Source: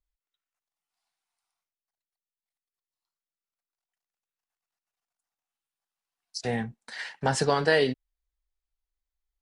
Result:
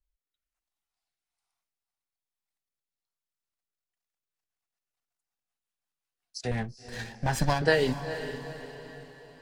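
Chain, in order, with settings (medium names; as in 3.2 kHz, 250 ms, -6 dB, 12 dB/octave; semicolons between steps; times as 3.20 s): 6.51–7.62 s: comb filter that takes the minimum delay 1.2 ms; rotary cabinet horn 1.1 Hz, later 5.5 Hz, at 3.73 s; bass shelf 110 Hz +6.5 dB; on a send: echo that smears into a reverb 454 ms, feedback 47%, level -11 dB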